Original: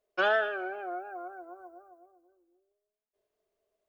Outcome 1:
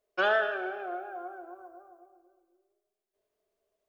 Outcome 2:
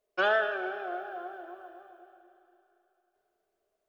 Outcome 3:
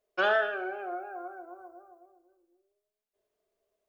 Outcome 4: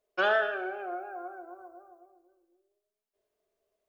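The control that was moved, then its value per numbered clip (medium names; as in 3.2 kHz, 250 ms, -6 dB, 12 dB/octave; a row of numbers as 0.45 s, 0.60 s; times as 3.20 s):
Schroeder reverb, RT60: 1.5 s, 3.2 s, 0.32 s, 0.71 s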